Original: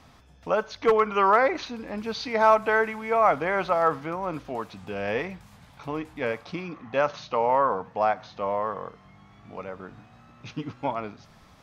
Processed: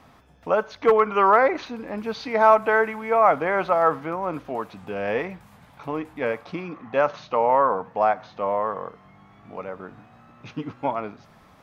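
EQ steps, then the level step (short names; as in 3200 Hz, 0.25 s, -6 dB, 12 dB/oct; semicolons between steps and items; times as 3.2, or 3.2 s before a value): low shelf 120 Hz -9.5 dB; bell 5400 Hz -8.5 dB 2 oct; +4.0 dB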